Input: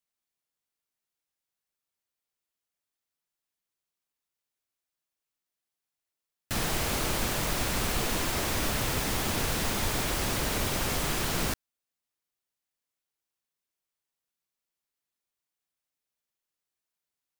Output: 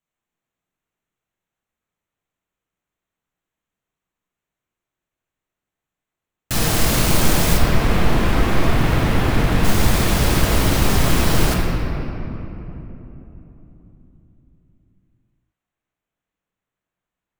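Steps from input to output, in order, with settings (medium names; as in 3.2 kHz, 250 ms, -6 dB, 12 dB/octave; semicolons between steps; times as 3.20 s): local Wiener filter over 9 samples; tone controls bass +5 dB, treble +7 dB, from 7.56 s treble -9 dB, from 9.63 s treble +3 dB; simulated room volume 200 m³, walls hard, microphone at 0.61 m; trim +5.5 dB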